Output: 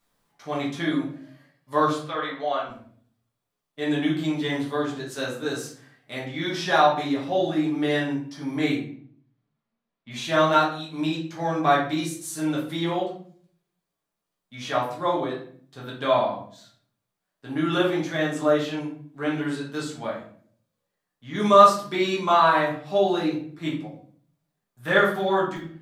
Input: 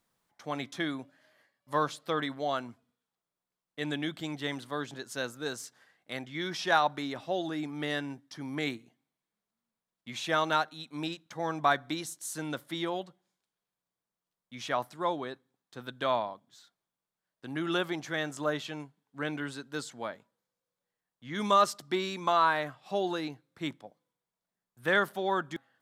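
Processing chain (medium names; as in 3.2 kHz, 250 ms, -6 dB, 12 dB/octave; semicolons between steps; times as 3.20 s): 2.02–2.69 s: three-band isolator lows -16 dB, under 500 Hz, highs -17 dB, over 4.4 kHz; harmonic-percussive split percussive -4 dB; 8.74–10.11 s: distance through air 180 m; simulated room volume 64 m³, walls mixed, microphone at 1.3 m; trim +2 dB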